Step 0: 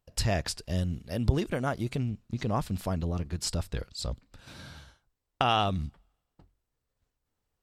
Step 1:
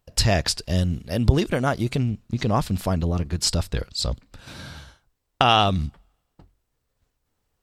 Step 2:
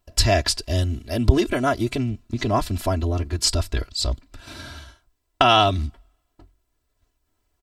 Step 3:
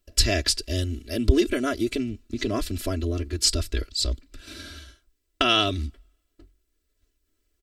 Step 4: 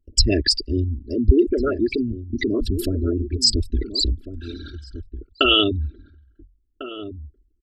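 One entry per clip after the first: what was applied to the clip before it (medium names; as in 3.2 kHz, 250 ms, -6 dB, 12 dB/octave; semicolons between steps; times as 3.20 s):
dynamic bell 4.4 kHz, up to +4 dB, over -47 dBFS, Q 1.1; trim +7.5 dB
comb 3 ms, depth 96%; trim -1 dB
static phaser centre 350 Hz, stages 4
resonances exaggerated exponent 3; echo from a far wall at 240 m, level -12 dB; trim +4.5 dB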